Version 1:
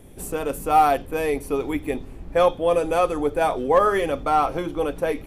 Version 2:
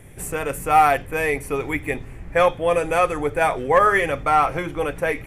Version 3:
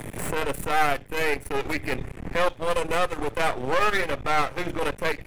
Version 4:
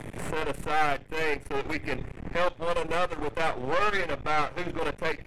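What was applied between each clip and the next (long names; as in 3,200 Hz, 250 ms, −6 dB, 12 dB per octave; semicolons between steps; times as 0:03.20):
octave-band graphic EQ 125/250/2,000/4,000/8,000 Hz +8/−5/+12/−5/+5 dB
half-wave rectification; transient designer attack −11 dB, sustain −7 dB; multiband upward and downward compressor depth 70%; level +1.5 dB
high-frequency loss of the air 52 metres; level −3 dB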